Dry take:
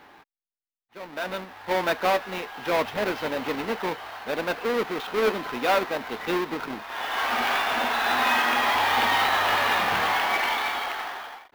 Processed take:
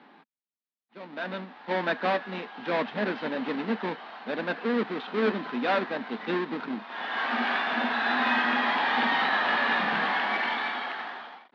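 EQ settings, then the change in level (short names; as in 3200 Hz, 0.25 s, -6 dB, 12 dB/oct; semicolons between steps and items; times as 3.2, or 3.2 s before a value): elliptic band-pass 160–4100 Hz, stop band 60 dB; bell 230 Hz +11.5 dB 0.67 oct; dynamic EQ 1700 Hz, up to +7 dB, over -43 dBFS, Q 5.2; -4.5 dB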